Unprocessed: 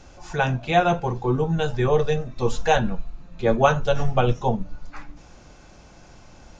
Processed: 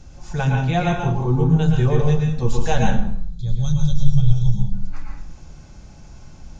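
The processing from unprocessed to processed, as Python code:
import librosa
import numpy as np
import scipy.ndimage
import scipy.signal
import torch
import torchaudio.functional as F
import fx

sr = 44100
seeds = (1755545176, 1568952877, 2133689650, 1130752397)

y = fx.spec_box(x, sr, start_s=3.12, length_s=1.61, low_hz=210.0, high_hz=3200.0, gain_db=-23)
y = fx.bass_treble(y, sr, bass_db=13, treble_db=6)
y = fx.rev_plate(y, sr, seeds[0], rt60_s=0.56, hf_ratio=0.8, predelay_ms=100, drr_db=0.0)
y = y * librosa.db_to_amplitude(-5.5)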